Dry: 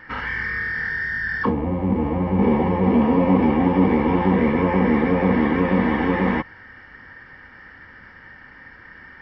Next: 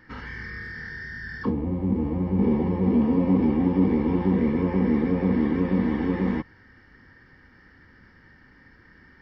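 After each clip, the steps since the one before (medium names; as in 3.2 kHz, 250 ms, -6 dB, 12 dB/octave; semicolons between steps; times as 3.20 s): high-order bell 1.3 kHz -9 dB 2.9 oct; trim -3 dB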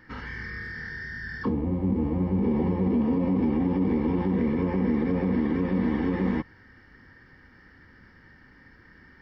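peak limiter -16.5 dBFS, peak gain reduction 7 dB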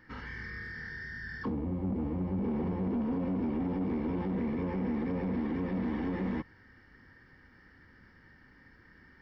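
saturation -21.5 dBFS, distortion -15 dB; trim -5 dB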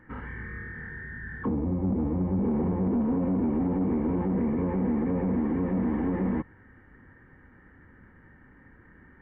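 Gaussian low-pass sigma 4.3 samples; trim +6 dB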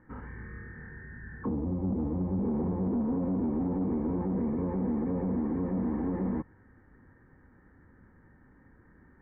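low-pass 1.4 kHz 12 dB/octave; trim -3.5 dB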